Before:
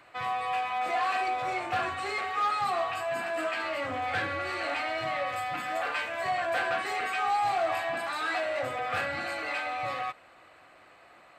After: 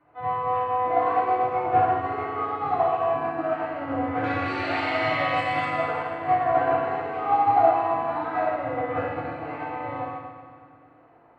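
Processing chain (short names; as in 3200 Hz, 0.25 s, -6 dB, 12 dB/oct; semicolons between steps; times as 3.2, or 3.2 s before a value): LPF 1000 Hz 12 dB/oct, from 4.24 s 3500 Hz, from 5.65 s 1000 Hz; FDN reverb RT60 2.2 s, low-frequency decay 1.45×, high-frequency decay 1×, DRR -10 dB; upward expander 1.5:1, over -35 dBFS; gain +1.5 dB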